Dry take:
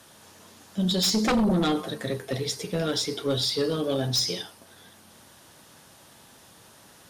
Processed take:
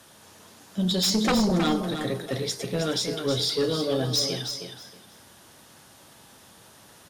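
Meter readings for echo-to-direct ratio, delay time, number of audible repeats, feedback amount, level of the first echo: -8.0 dB, 317 ms, 2, 20%, -8.0 dB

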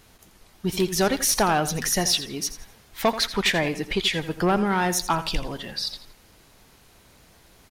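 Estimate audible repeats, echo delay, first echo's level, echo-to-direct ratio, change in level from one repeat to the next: 3, 84 ms, -13.5 dB, -13.0 dB, -10.5 dB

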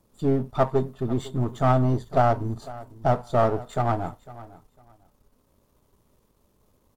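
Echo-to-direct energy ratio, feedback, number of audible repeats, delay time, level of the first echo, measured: -18.5 dB, 21%, 2, 502 ms, -18.5 dB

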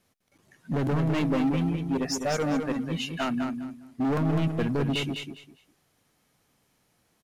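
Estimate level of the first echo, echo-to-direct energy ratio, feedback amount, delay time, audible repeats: -6.0 dB, -6.0 dB, 22%, 204 ms, 3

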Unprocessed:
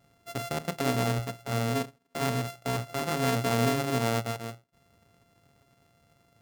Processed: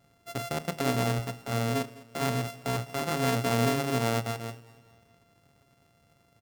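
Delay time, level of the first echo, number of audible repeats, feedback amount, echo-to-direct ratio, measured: 205 ms, -20.0 dB, 3, 48%, -19.0 dB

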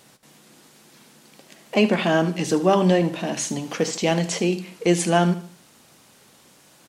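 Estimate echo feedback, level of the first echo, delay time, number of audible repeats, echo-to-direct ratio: 38%, -14.0 dB, 75 ms, 3, -13.5 dB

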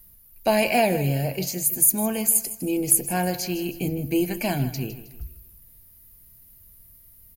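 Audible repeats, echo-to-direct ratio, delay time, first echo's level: 3, -13.5 dB, 158 ms, -14.0 dB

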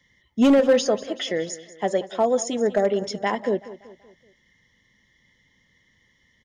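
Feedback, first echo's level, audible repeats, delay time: 46%, -16.5 dB, 3, 190 ms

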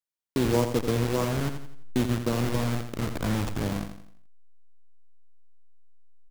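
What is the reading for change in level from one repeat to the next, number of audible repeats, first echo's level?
-7.5 dB, 4, -8.5 dB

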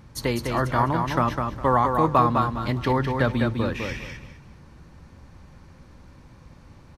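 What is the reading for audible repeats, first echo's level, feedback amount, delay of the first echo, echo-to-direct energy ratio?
3, -5.0 dB, 24%, 204 ms, -4.5 dB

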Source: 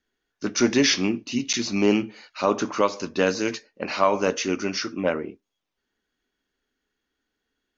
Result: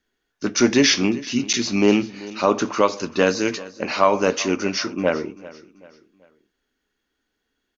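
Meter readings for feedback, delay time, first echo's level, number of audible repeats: 40%, 387 ms, -19.0 dB, 3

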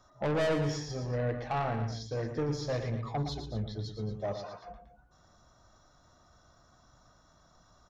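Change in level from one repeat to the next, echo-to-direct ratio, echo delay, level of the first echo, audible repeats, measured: -4.5 dB, -7.0 dB, 115 ms, -8.5 dB, 2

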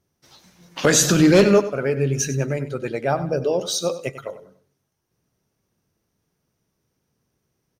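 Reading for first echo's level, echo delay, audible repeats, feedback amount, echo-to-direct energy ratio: -14.0 dB, 96 ms, 3, 34%, -13.5 dB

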